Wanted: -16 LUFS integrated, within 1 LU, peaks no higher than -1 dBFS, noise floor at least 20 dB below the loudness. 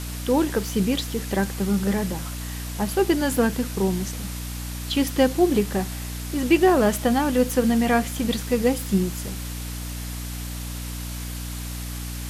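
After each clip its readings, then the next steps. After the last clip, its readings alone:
hum 60 Hz; highest harmonic 300 Hz; hum level -30 dBFS; noise floor -32 dBFS; noise floor target -44 dBFS; loudness -24.0 LUFS; peak level -6.5 dBFS; loudness target -16.0 LUFS
-> de-hum 60 Hz, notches 5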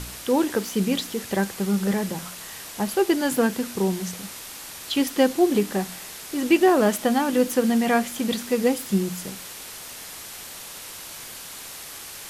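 hum not found; noise floor -39 dBFS; noise floor target -43 dBFS
-> noise reduction 6 dB, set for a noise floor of -39 dBFS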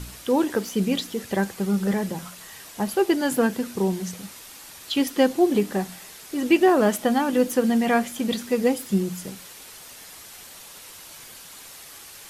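noise floor -44 dBFS; loudness -23.5 LUFS; peak level -6.5 dBFS; loudness target -16.0 LUFS
-> trim +7.5 dB; peak limiter -1 dBFS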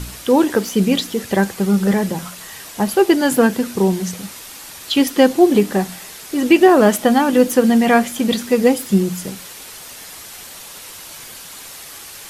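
loudness -16.0 LUFS; peak level -1.0 dBFS; noise floor -36 dBFS

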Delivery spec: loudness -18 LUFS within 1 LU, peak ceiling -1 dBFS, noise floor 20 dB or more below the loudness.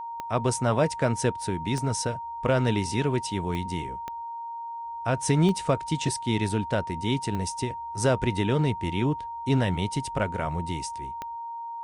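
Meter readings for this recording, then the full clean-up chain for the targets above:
clicks found 7; steady tone 930 Hz; tone level -33 dBFS; loudness -27.5 LUFS; peak level -11.0 dBFS; loudness target -18.0 LUFS
-> de-click; band-stop 930 Hz, Q 30; trim +9.5 dB

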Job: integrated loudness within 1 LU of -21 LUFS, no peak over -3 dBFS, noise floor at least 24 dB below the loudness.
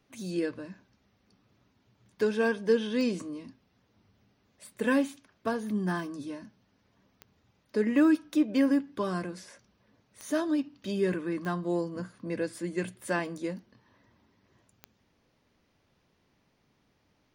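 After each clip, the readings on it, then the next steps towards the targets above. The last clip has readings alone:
clicks found 5; loudness -30.0 LUFS; peak level -13.5 dBFS; loudness target -21.0 LUFS
-> de-click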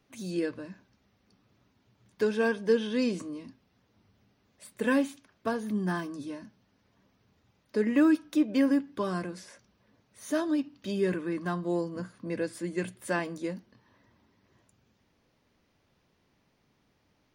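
clicks found 0; loudness -30.0 LUFS; peak level -13.5 dBFS; loudness target -21.0 LUFS
-> trim +9 dB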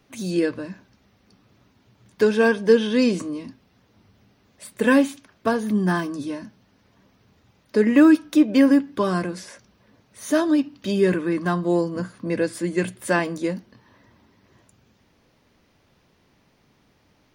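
loudness -21.0 LUFS; peak level -4.5 dBFS; noise floor -62 dBFS

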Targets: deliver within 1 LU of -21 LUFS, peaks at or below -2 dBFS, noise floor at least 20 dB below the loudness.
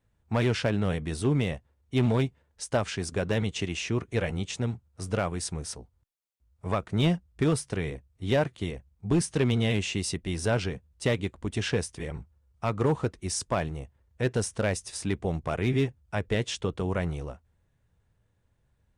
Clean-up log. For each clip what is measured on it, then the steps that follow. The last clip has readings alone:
clipped samples 0.5%; clipping level -17.5 dBFS; loudness -29.5 LUFS; peak level -17.5 dBFS; loudness target -21.0 LUFS
-> clip repair -17.5 dBFS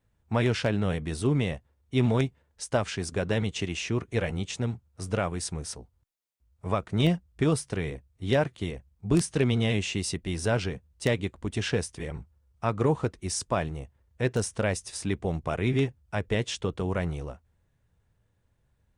clipped samples 0.0%; loudness -29.0 LUFS; peak level -8.5 dBFS; loudness target -21.0 LUFS
-> trim +8 dB; peak limiter -2 dBFS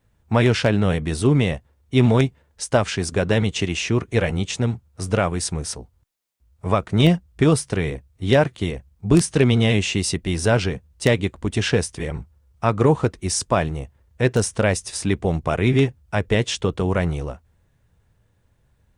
loudness -21.0 LUFS; peak level -2.0 dBFS; noise floor -63 dBFS

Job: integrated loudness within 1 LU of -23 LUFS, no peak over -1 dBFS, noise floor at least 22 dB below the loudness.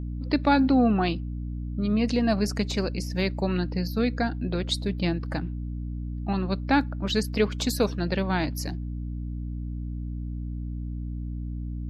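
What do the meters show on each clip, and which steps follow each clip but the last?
hum 60 Hz; highest harmonic 300 Hz; hum level -30 dBFS; loudness -27.5 LUFS; peak level -9.0 dBFS; loudness target -23.0 LUFS
-> hum notches 60/120/180/240/300 Hz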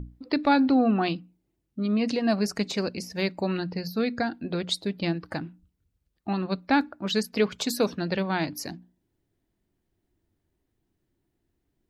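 hum not found; loudness -27.0 LUFS; peak level -10.5 dBFS; loudness target -23.0 LUFS
-> trim +4 dB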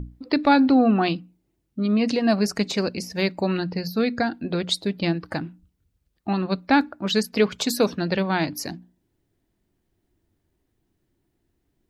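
loudness -23.0 LUFS; peak level -6.5 dBFS; noise floor -74 dBFS

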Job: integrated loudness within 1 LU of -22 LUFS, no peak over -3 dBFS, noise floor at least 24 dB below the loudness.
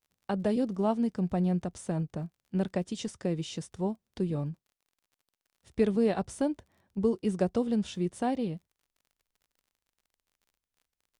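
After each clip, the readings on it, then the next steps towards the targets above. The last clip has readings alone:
tick rate 33 per s; loudness -31.5 LUFS; peak level -14.5 dBFS; loudness target -22.0 LUFS
-> de-click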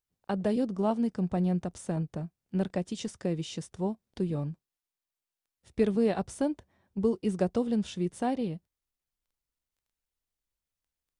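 tick rate 0 per s; loudness -31.5 LUFS; peak level -14.5 dBFS; loudness target -22.0 LUFS
-> trim +9.5 dB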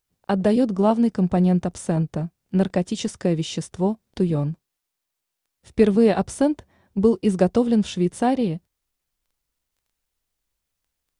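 loudness -22.0 LUFS; peak level -5.0 dBFS; noise floor -81 dBFS

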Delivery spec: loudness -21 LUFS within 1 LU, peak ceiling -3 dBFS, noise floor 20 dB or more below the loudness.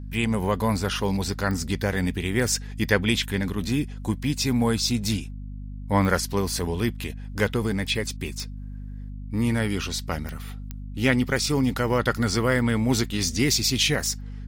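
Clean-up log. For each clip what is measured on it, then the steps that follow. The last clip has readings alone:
clicks found 6; hum 50 Hz; highest harmonic 250 Hz; hum level -33 dBFS; loudness -24.5 LUFS; peak level -5.5 dBFS; loudness target -21.0 LUFS
-> de-click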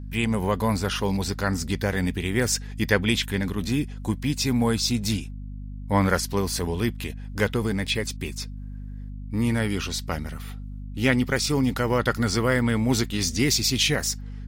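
clicks found 0; hum 50 Hz; highest harmonic 250 Hz; hum level -33 dBFS
-> hum notches 50/100/150/200/250 Hz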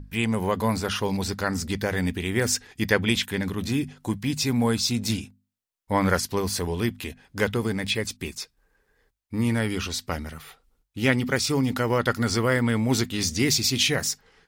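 hum not found; loudness -25.0 LUFS; peak level -5.0 dBFS; loudness target -21.0 LUFS
-> trim +4 dB; peak limiter -3 dBFS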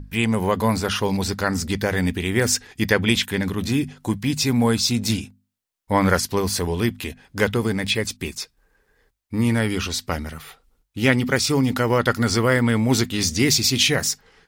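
loudness -21.0 LUFS; peak level -3.0 dBFS; noise floor -70 dBFS

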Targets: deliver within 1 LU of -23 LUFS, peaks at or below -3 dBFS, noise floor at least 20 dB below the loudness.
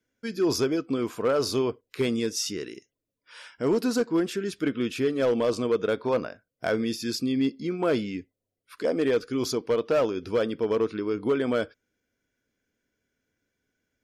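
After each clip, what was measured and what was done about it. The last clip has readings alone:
clipped samples 0.8%; clipping level -17.5 dBFS; loudness -27.0 LUFS; peak level -17.5 dBFS; loudness target -23.0 LUFS
-> clip repair -17.5 dBFS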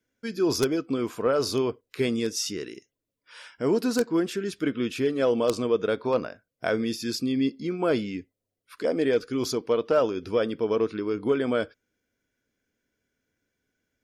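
clipped samples 0.0%; loudness -26.5 LUFS; peak level -8.5 dBFS; loudness target -23.0 LUFS
-> trim +3.5 dB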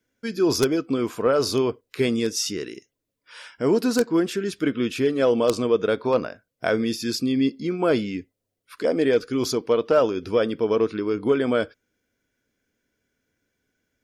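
loudness -23.0 LUFS; peak level -5.0 dBFS; noise floor -81 dBFS

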